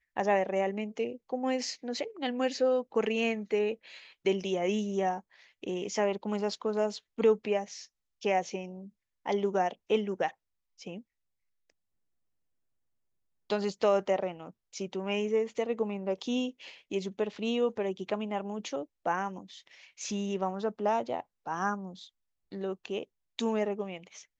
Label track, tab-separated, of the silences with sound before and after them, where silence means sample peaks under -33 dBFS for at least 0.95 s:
10.950000	13.500000	silence